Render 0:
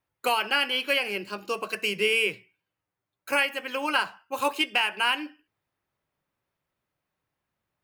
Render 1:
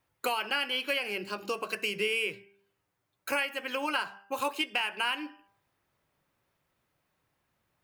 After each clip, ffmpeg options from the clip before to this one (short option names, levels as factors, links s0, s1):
-af "bandreject=f=198.7:t=h:w=4,bandreject=f=397.4:t=h:w=4,bandreject=f=596.1:t=h:w=4,bandreject=f=794.8:t=h:w=4,bandreject=f=993.5:t=h:w=4,bandreject=f=1192.2:t=h:w=4,bandreject=f=1390.9:t=h:w=4,bandreject=f=1589.6:t=h:w=4,acompressor=threshold=0.00708:ratio=2,volume=2"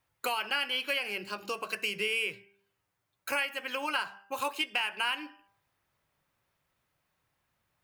-af "equalizer=f=320:t=o:w=1.9:g=-5"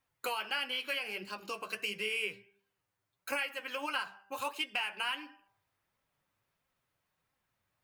-af "flanger=delay=3.7:depth=6.8:regen=47:speed=1.5:shape=sinusoidal"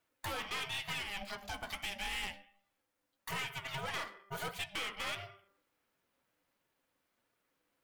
-af "aeval=exprs='val(0)*sin(2*PI*400*n/s)':c=same,aeval=exprs='(tanh(89.1*val(0)+0.35)-tanh(0.35))/89.1':c=same,volume=1.78"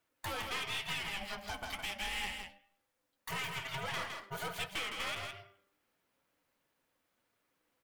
-af "aecho=1:1:162:0.531"